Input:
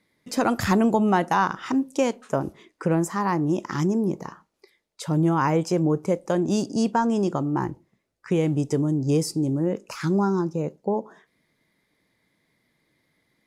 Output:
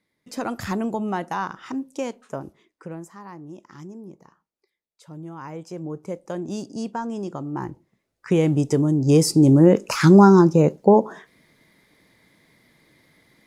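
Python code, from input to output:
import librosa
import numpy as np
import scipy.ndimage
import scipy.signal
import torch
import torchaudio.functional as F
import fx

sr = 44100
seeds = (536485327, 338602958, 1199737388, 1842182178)

y = fx.gain(x, sr, db=fx.line((2.25, -6.0), (3.21, -16.5), (5.29, -16.5), (6.2, -7.0), (7.3, -7.0), (8.33, 3.5), (8.96, 3.5), (9.52, 11.0)))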